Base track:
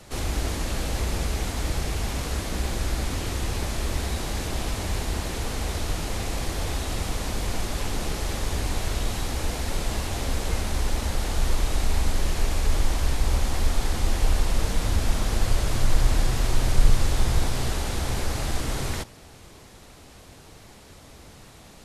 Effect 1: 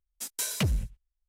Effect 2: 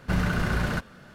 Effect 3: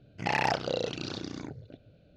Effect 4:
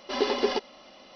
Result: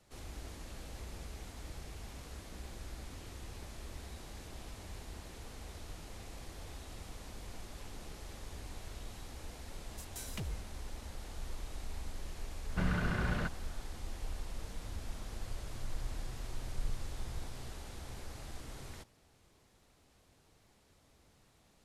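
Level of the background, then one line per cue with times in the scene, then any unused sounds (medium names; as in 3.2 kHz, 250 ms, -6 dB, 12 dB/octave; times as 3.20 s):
base track -19.5 dB
9.77 s: add 1 -15 dB
12.68 s: add 2 -8 dB + low-pass 4.3 kHz
not used: 3, 4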